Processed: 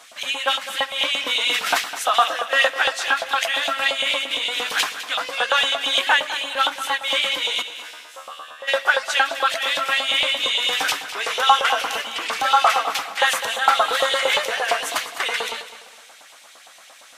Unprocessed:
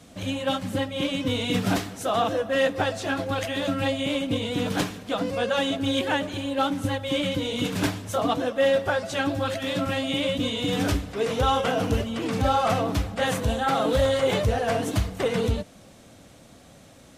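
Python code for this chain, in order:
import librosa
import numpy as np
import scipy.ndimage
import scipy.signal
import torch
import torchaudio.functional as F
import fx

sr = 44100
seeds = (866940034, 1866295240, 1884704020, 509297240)

p1 = fx.comb_fb(x, sr, f0_hz=77.0, decay_s=1.6, harmonics='all', damping=0.0, mix_pct=100, at=(7.61, 8.67), fade=0.02)
p2 = fx.filter_lfo_highpass(p1, sr, shape='saw_up', hz=8.7, low_hz=790.0, high_hz=3100.0, q=1.8)
p3 = p2 + fx.echo_feedback(p2, sr, ms=205, feedback_pct=34, wet_db=-13, dry=0)
y = p3 * 10.0 ** (8.0 / 20.0)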